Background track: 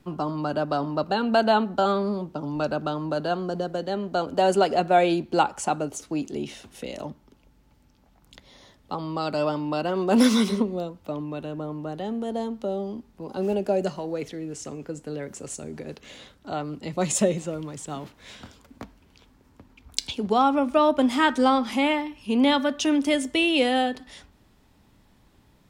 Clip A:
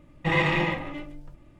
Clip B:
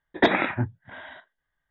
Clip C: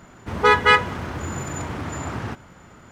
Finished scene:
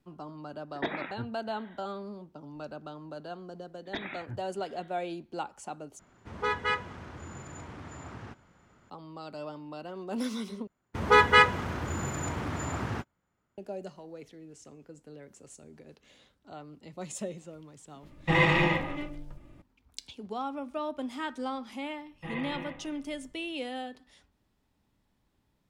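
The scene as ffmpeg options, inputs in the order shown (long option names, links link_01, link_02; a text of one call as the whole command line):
ffmpeg -i bed.wav -i cue0.wav -i cue1.wav -i cue2.wav -filter_complex "[2:a]asplit=2[link_01][link_02];[3:a]asplit=2[link_03][link_04];[1:a]asplit=2[link_05][link_06];[0:a]volume=-15dB[link_07];[link_02]equalizer=frequency=570:width=0.31:gain=-14[link_08];[link_03]lowpass=9100[link_09];[link_04]agate=range=-28dB:threshold=-37dB:ratio=16:release=100:detection=peak[link_10];[link_06]aresample=8000,aresample=44100[link_11];[link_07]asplit=3[link_12][link_13][link_14];[link_12]atrim=end=5.994[link_15];[link_09]atrim=end=2.91,asetpts=PTS-STARTPTS,volume=-14.5dB[link_16];[link_13]atrim=start=8.896:end=10.674[link_17];[link_10]atrim=end=2.91,asetpts=PTS-STARTPTS,volume=-4dB[link_18];[link_14]atrim=start=13.576[link_19];[link_01]atrim=end=1.7,asetpts=PTS-STARTPTS,volume=-13.5dB,afade=type=in:duration=0.004:curve=hsin,afade=type=out:start_time=1.696:duration=0.004:curve=hsin,adelay=600[link_20];[link_08]atrim=end=1.7,asetpts=PTS-STARTPTS,volume=-8.5dB,afade=type=in:duration=0.004:curve=hsin,afade=type=out:start_time=1.696:duration=0.004:curve=hsin,adelay=3710[link_21];[link_05]atrim=end=1.59,asetpts=PTS-STARTPTS,afade=type=in:duration=0.004:curve=hsin,afade=type=out:start_time=1.586:duration=0.004:curve=hsin,adelay=18030[link_22];[link_11]atrim=end=1.59,asetpts=PTS-STARTPTS,volume=-15.5dB,afade=type=in:duration=0.004:curve=hsin,afade=type=out:start_time=1.586:duration=0.004:curve=hsin,adelay=21980[link_23];[link_15][link_16]acrossfade=duration=0.004:curve1=hsin:curve2=hsin[link_24];[link_24][link_17]acrossfade=duration=0.004:curve1=hsin:curve2=hsin[link_25];[link_25][link_18]acrossfade=duration=0.004:curve1=hsin:curve2=hsin[link_26];[link_26][link_19]acrossfade=duration=0.004:curve1=hsin:curve2=hsin[link_27];[link_27][link_20][link_21][link_22][link_23]amix=inputs=5:normalize=0" out.wav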